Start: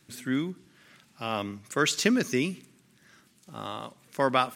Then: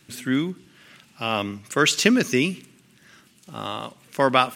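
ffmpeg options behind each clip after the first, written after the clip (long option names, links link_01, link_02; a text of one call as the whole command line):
ffmpeg -i in.wav -af "equalizer=frequency=2800:width=3.7:gain=5,volume=5.5dB" out.wav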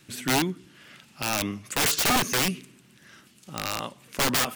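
ffmpeg -i in.wav -af "aeval=exprs='(mod(7.08*val(0)+1,2)-1)/7.08':channel_layout=same" out.wav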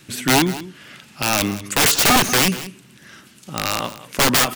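ffmpeg -i in.wav -af "aecho=1:1:187:0.168,volume=8dB" out.wav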